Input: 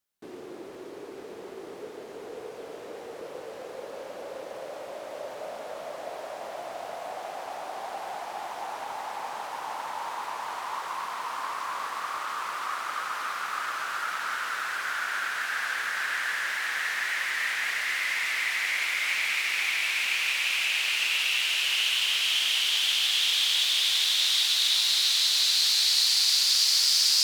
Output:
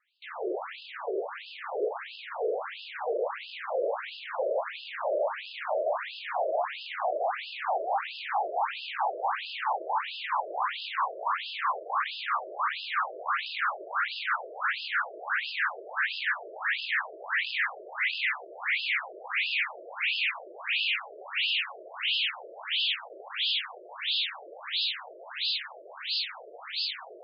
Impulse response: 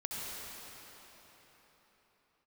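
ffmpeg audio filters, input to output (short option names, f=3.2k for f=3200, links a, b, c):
-filter_complex "[0:a]aeval=exprs='clip(val(0),-1,0.0891)':c=same,asplit=2[a][b];[b]highpass=f=720:p=1,volume=34dB,asoftclip=type=tanh:threshold=-10.5dB[c];[a][c]amix=inputs=2:normalize=0,lowpass=f=2.5k:p=1,volume=-6dB,asplit=2[d][e];[1:a]atrim=start_sample=2205[f];[e][f]afir=irnorm=-1:irlink=0,volume=-25dB[g];[d][g]amix=inputs=2:normalize=0,aresample=22050,aresample=44100,afftfilt=real='re*between(b*sr/1024,470*pow(3700/470,0.5+0.5*sin(2*PI*1.5*pts/sr))/1.41,470*pow(3700/470,0.5+0.5*sin(2*PI*1.5*pts/sr))*1.41)':imag='im*between(b*sr/1024,470*pow(3700/470,0.5+0.5*sin(2*PI*1.5*pts/sr))/1.41,470*pow(3700/470,0.5+0.5*sin(2*PI*1.5*pts/sr))*1.41)':win_size=1024:overlap=0.75,volume=-6.5dB"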